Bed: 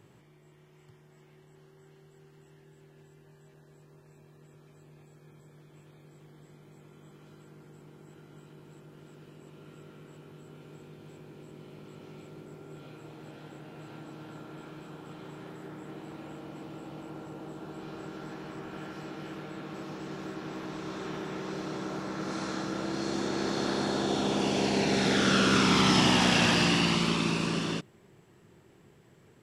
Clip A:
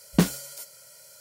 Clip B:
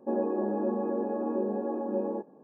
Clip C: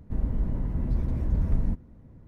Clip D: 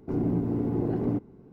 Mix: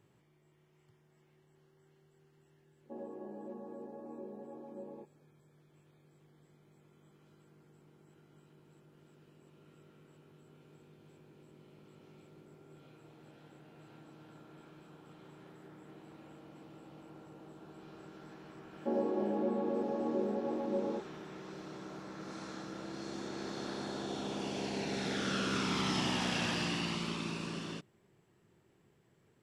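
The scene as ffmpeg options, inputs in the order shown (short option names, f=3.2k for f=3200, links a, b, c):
-filter_complex "[2:a]asplit=2[a][b];[0:a]volume=-10.5dB[c];[b]lowpass=1.7k[d];[a]atrim=end=2.43,asetpts=PTS-STARTPTS,volume=-16.5dB,afade=t=in:d=0.004:c=hsin,afade=t=out:st=2.426:d=0.004:c=hsin,adelay=2830[e];[d]atrim=end=2.43,asetpts=PTS-STARTPTS,volume=-4dB,afade=t=in:d=0.004:c=hsin,afade=t=out:st=2.426:d=0.004:c=hsin,adelay=18790[f];[c][e][f]amix=inputs=3:normalize=0"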